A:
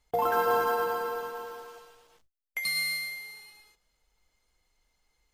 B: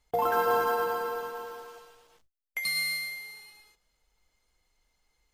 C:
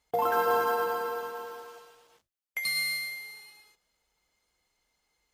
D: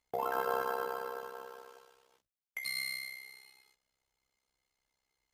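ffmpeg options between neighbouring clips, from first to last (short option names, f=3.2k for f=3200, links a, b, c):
-af anull
-af "highpass=f=130:p=1"
-af "tremolo=f=65:d=0.857,volume=-4dB"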